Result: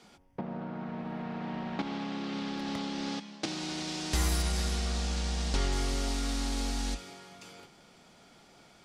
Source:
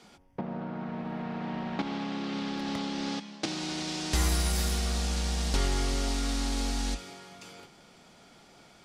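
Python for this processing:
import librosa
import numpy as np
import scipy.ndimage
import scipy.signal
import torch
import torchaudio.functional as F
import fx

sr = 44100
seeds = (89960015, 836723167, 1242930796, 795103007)

y = fx.lowpass(x, sr, hz=8100.0, slope=12, at=(4.42, 5.73))
y = y * 10.0 ** (-2.0 / 20.0)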